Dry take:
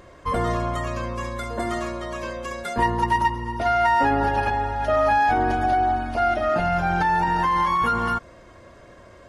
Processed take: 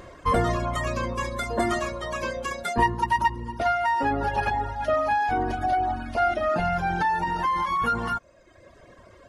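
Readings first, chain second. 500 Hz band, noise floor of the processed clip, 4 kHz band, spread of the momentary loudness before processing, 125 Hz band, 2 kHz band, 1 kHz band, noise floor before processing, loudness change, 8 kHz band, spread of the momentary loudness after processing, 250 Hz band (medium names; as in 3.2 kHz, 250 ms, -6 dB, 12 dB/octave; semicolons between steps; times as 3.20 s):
-2.5 dB, -53 dBFS, -1.0 dB, 11 LU, -2.5 dB, -2.5 dB, -3.0 dB, -48 dBFS, -3.0 dB, no reading, 6 LU, -3.0 dB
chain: gain riding within 4 dB 0.5 s; reverb removal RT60 1.1 s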